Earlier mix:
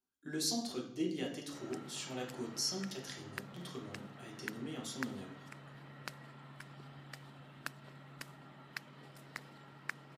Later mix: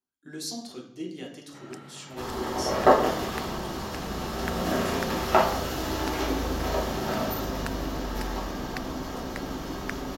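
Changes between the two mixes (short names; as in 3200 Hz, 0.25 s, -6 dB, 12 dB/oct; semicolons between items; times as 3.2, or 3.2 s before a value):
first sound +5.0 dB; second sound: unmuted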